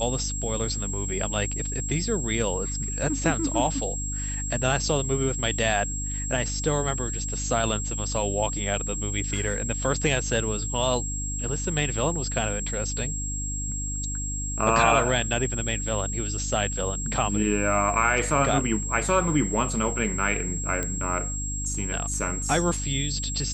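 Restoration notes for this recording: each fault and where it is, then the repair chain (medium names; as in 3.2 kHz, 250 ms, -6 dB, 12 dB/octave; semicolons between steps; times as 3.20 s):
hum 50 Hz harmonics 6 -32 dBFS
whine 7.6 kHz -31 dBFS
20.83 s: pop -14 dBFS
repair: de-click; de-hum 50 Hz, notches 6; band-stop 7.6 kHz, Q 30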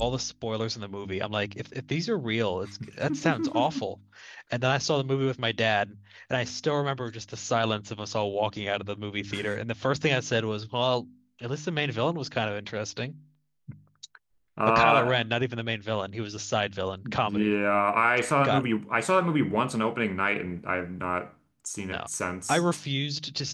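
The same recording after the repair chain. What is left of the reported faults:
nothing left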